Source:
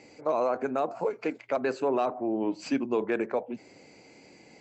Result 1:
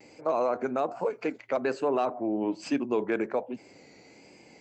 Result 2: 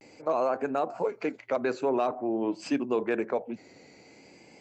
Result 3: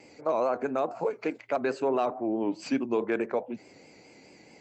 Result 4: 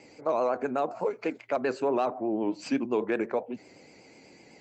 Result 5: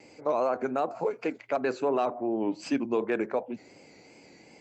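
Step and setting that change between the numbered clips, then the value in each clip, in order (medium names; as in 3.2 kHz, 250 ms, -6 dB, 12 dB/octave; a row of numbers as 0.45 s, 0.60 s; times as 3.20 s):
vibrato, rate: 1.2 Hz, 0.47 Hz, 4.7 Hz, 8 Hz, 2.7 Hz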